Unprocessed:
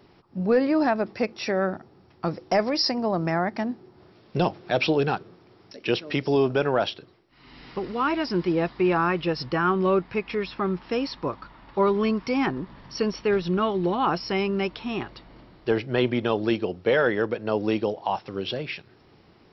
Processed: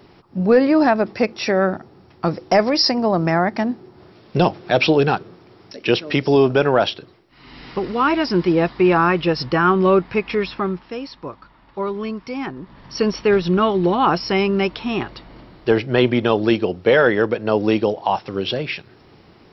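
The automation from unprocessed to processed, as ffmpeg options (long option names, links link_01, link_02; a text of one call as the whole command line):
ffmpeg -i in.wav -af "volume=17dB,afade=type=out:start_time=10.45:duration=0.45:silence=0.316228,afade=type=in:start_time=12.58:duration=0.52:silence=0.316228" out.wav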